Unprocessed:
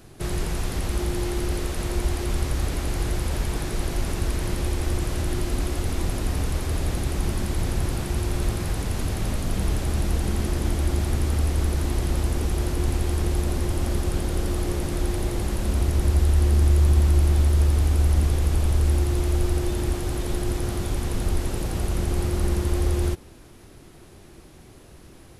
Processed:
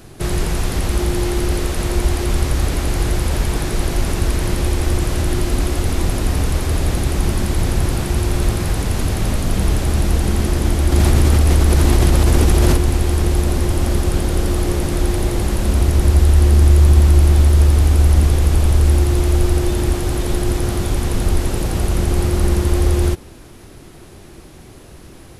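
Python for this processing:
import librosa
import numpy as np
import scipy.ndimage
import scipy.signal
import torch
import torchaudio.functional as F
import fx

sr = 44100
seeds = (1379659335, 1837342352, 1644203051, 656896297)

y = fx.env_flatten(x, sr, amount_pct=100, at=(10.92, 12.77))
y = F.gain(torch.from_numpy(y), 7.5).numpy()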